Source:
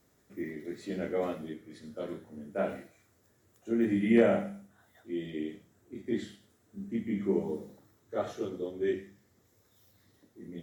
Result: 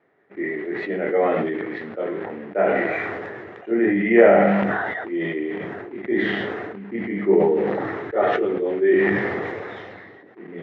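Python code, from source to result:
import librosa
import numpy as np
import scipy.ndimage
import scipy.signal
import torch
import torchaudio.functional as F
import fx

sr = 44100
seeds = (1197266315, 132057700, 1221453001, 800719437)

p1 = fx.quant_dither(x, sr, seeds[0], bits=8, dither='none')
p2 = x + (p1 * 10.0 ** (-6.5 / 20.0))
p3 = fx.cabinet(p2, sr, low_hz=230.0, low_slope=12, high_hz=2500.0, hz=(240.0, 410.0, 750.0, 1900.0), db=(-7, 5, 5, 7))
p4 = fx.sustainer(p3, sr, db_per_s=25.0)
y = p4 * 10.0 ** (5.5 / 20.0)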